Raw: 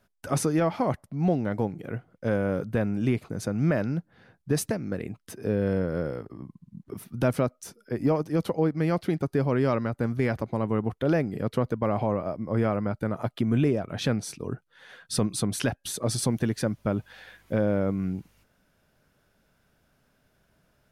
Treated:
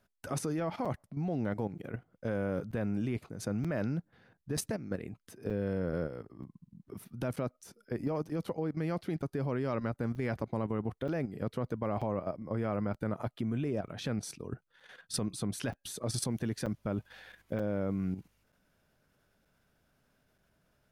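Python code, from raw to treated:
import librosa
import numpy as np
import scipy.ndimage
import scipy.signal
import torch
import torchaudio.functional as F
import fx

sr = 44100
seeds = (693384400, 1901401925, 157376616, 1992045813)

y = fx.level_steps(x, sr, step_db=10)
y = fx.buffer_crackle(y, sr, first_s=0.85, period_s=0.93, block=256, kind='zero')
y = y * 10.0 ** (-2.5 / 20.0)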